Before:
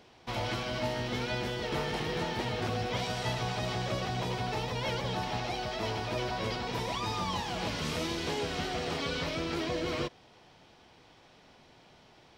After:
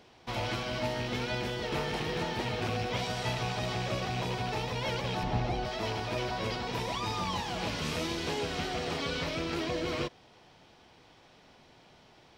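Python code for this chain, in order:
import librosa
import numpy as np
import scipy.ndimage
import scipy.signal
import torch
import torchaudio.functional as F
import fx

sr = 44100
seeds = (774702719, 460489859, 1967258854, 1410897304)

y = fx.rattle_buzz(x, sr, strikes_db=-34.0, level_db=-30.0)
y = fx.tilt_eq(y, sr, slope=-2.5, at=(5.23, 5.65))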